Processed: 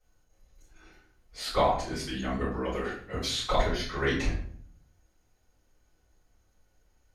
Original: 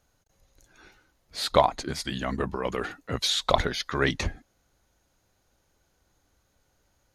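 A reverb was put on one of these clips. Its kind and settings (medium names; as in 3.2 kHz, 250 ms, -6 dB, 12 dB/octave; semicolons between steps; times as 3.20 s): simulated room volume 71 m³, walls mixed, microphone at 3.6 m; trim -17 dB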